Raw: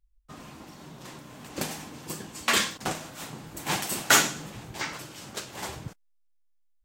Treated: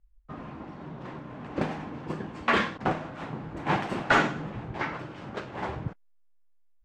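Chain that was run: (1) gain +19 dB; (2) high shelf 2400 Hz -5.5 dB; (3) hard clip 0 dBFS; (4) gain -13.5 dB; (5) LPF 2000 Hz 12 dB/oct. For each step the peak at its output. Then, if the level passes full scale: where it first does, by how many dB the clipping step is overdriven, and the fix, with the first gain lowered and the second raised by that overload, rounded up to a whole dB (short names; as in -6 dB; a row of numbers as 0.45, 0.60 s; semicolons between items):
+9.0, +8.5, 0.0, -13.5, -13.0 dBFS; step 1, 8.5 dB; step 1 +10 dB, step 4 -4.5 dB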